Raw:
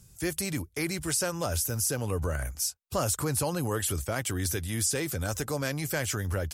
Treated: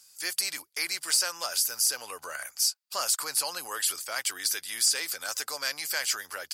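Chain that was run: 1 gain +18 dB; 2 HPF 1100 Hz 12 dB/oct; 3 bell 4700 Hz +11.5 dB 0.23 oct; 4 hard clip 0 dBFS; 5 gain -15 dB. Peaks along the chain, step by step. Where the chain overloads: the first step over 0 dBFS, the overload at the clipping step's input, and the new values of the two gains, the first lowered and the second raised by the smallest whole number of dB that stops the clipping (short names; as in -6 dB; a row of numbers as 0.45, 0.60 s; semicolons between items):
+2.5, +2.0, +4.5, 0.0, -15.0 dBFS; step 1, 4.5 dB; step 1 +13 dB, step 5 -10 dB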